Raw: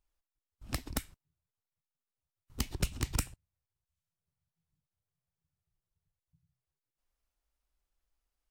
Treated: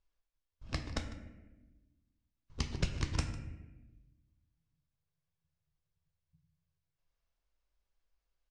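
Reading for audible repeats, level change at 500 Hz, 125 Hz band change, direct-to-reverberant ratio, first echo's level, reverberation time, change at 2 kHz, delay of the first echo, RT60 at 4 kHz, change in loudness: 1, +0.5 dB, +1.0 dB, 5.5 dB, -16.5 dB, 1.1 s, 0.0 dB, 0.151 s, 0.65 s, -2.0 dB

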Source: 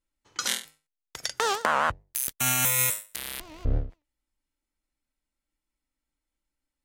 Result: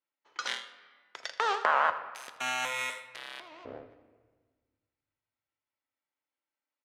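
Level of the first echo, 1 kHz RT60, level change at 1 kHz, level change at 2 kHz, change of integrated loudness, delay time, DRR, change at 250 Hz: -16.0 dB, 1.4 s, -0.5 dB, -1.5 dB, -5.0 dB, 81 ms, 9.0 dB, -12.0 dB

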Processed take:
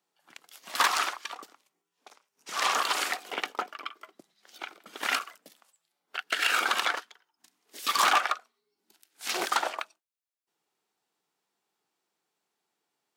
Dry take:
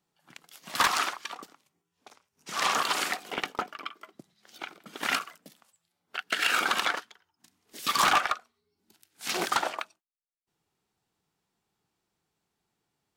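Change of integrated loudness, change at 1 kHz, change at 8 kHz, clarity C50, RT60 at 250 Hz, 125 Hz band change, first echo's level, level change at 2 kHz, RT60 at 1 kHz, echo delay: 0.0 dB, 0.0 dB, 0.0 dB, none, none, under -10 dB, none, 0.0 dB, none, none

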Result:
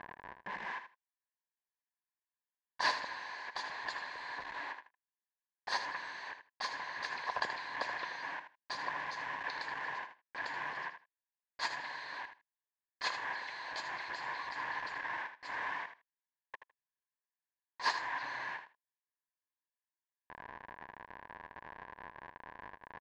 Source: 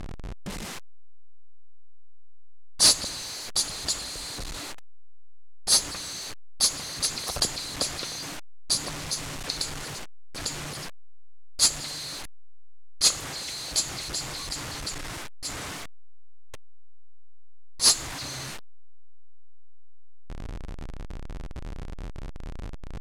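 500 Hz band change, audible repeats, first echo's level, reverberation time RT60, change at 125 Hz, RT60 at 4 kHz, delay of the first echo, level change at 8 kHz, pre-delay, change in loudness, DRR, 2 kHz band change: -8.5 dB, 2, -10.0 dB, none, -23.5 dB, none, 79 ms, -30.5 dB, none, -13.5 dB, none, +2.0 dB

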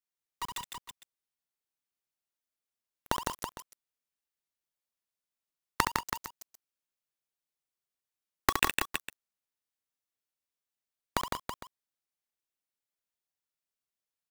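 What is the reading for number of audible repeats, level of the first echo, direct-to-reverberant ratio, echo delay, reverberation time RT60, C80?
4, -6.5 dB, none, 68 ms, none, none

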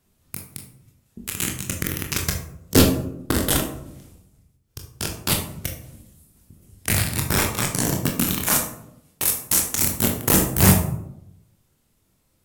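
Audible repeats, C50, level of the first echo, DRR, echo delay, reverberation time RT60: none, 6.5 dB, none, 1.5 dB, none, 0.80 s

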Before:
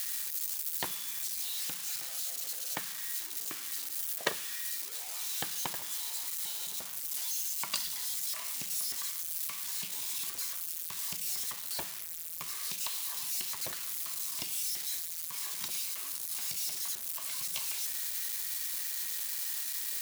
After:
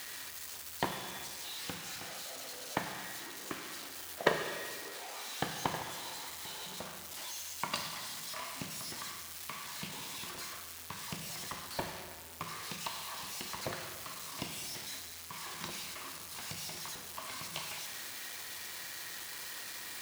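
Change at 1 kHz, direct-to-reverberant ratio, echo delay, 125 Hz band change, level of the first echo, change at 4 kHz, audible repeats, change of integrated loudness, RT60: +6.0 dB, 4.5 dB, none, +9.0 dB, none, -2.5 dB, none, -6.5 dB, 1.8 s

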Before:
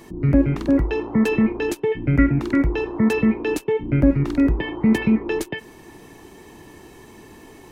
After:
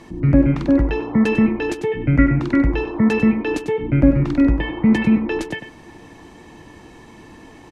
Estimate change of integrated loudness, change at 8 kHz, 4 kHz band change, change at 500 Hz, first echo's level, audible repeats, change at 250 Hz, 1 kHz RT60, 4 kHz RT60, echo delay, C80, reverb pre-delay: +2.5 dB, n/a, +1.5 dB, +0.5 dB, -10.0 dB, 1, +2.5 dB, none, none, 97 ms, none, none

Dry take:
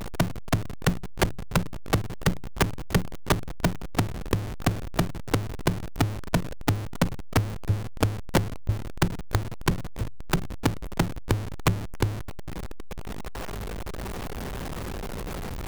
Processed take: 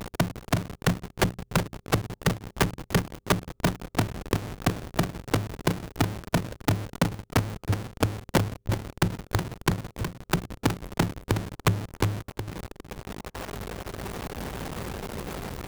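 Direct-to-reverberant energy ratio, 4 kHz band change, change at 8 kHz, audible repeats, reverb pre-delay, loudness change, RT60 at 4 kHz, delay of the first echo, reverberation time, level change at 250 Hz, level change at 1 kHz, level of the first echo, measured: none, +0.5 dB, +0.5 dB, 1, none, -0.5 dB, none, 0.368 s, none, 0.0 dB, +0.5 dB, -9.0 dB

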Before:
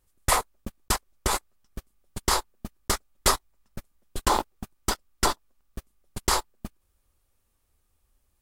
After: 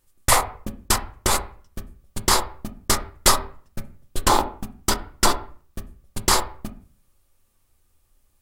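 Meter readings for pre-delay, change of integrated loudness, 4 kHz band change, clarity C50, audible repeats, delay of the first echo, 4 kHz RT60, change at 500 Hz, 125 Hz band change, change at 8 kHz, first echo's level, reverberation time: 3 ms, +5.5 dB, +6.0 dB, 13.5 dB, none, none, 0.35 s, +5.0 dB, +5.0 dB, +6.5 dB, none, 0.45 s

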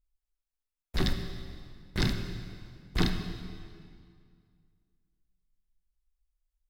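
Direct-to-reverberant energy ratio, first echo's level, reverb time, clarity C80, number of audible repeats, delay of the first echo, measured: 5.0 dB, none, 2.2 s, 8.0 dB, none, none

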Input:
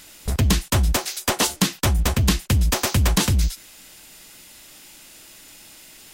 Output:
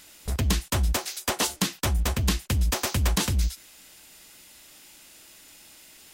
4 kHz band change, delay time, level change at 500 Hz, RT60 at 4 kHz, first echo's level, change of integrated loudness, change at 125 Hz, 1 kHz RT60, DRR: -5.0 dB, none, -5.5 dB, none, none, -5.5 dB, -6.0 dB, none, none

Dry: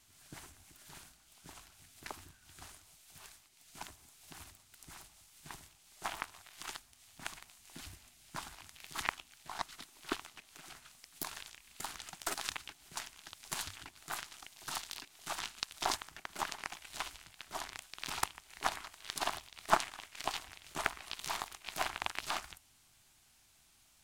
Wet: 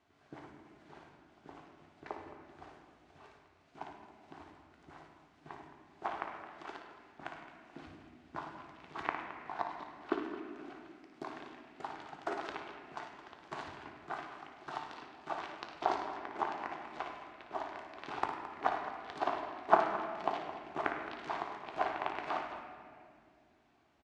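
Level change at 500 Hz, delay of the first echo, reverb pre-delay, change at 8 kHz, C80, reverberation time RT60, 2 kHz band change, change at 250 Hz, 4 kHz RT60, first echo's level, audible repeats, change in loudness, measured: +7.5 dB, 57 ms, 3 ms, under -20 dB, 5.0 dB, 2.2 s, -1.5 dB, +7.0 dB, 1.4 s, -8.5 dB, 2, +1.5 dB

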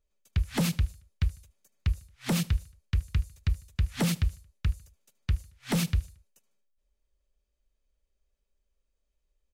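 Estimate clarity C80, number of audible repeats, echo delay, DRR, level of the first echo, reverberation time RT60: none, 2, 75 ms, none, -23.0 dB, none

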